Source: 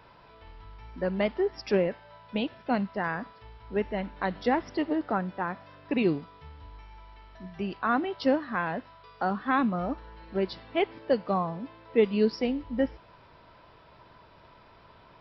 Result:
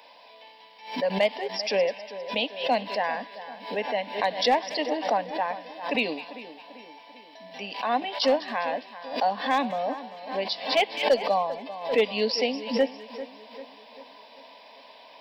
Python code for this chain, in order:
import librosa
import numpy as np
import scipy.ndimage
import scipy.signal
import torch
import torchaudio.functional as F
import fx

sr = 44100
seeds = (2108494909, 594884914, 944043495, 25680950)

p1 = scipy.signal.sosfilt(scipy.signal.butter(4, 280.0, 'highpass', fs=sr, output='sos'), x)
p2 = fx.tilt_shelf(p1, sr, db=-6.0, hz=680.0)
p3 = fx.rider(p2, sr, range_db=3, speed_s=2.0)
p4 = p2 + (p3 * 10.0 ** (1.5 / 20.0))
p5 = fx.fixed_phaser(p4, sr, hz=360.0, stages=6)
p6 = np.clip(10.0 ** (14.0 / 20.0) * p5, -1.0, 1.0) / 10.0 ** (14.0 / 20.0)
p7 = p6 + fx.echo_split(p6, sr, split_hz=2000.0, low_ms=393, high_ms=202, feedback_pct=52, wet_db=-14.0, dry=0)
y = fx.pre_swell(p7, sr, db_per_s=110.0)